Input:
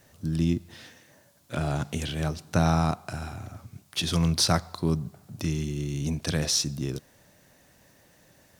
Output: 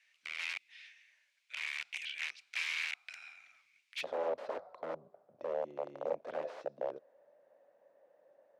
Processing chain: integer overflow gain 22 dB; ladder band-pass 2.5 kHz, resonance 70%, from 4.02 s 600 Hz; trim +2.5 dB

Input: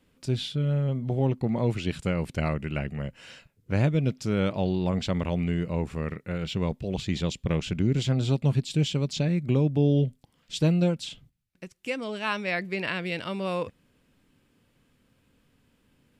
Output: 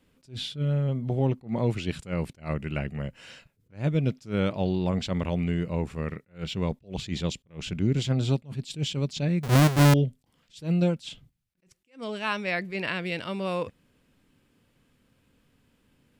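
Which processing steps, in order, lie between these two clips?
9.43–9.94 s: square wave that keeps the level; attacks held to a fixed rise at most 230 dB/s

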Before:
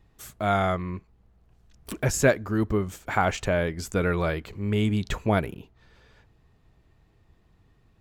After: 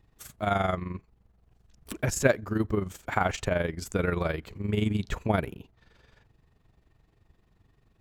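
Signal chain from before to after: AM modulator 23 Hz, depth 50%

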